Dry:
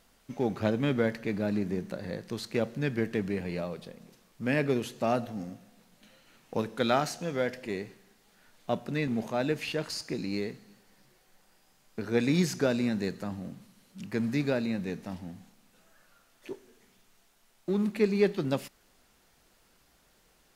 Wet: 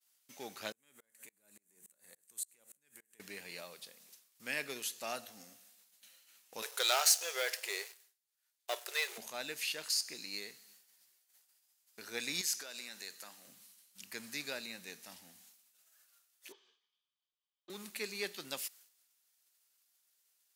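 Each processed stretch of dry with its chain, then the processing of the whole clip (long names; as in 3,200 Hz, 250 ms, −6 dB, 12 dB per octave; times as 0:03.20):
0:00.72–0:03.20: high shelf with overshoot 6,400 Hz +9 dB, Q 3 + downward compressor 16 to 1, threshold −38 dBFS + tremolo with a ramp in dB swelling 3.5 Hz, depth 30 dB
0:06.62–0:09.18: leveller curve on the samples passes 2 + linear-phase brick-wall high-pass 350 Hz
0:12.41–0:13.48: high-pass filter 530 Hz 6 dB per octave + downward compressor 5 to 1, threshold −33 dBFS
0:16.52–0:17.70: loudspeaker in its box 210–4,300 Hz, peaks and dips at 260 Hz −10 dB, 620 Hz −9 dB, 1,200 Hz +8 dB, 2,000 Hz −9 dB, 3,100 Hz +8 dB + notch comb filter 1,400 Hz
whole clip: downward expander −55 dBFS; first difference; level +6.5 dB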